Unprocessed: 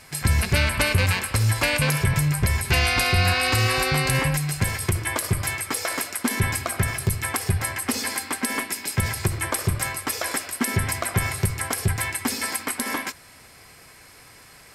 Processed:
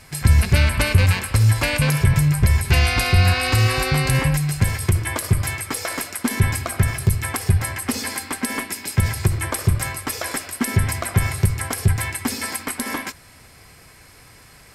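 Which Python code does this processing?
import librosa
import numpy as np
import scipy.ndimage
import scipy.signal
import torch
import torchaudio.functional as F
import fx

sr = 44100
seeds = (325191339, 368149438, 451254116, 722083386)

y = fx.low_shelf(x, sr, hz=170.0, db=8.5)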